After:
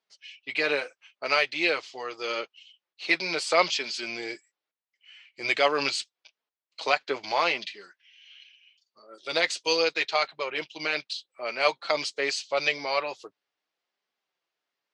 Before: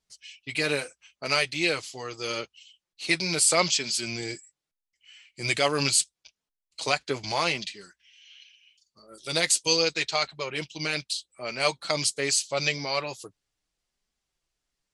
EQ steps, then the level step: HPF 440 Hz 12 dB/oct; air absorption 200 m; +4.0 dB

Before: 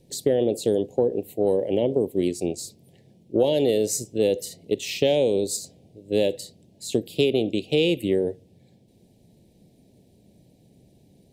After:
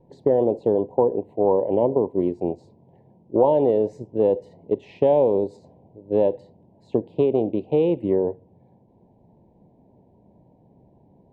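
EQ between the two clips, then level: synth low-pass 970 Hz, resonance Q 8.8; 0.0 dB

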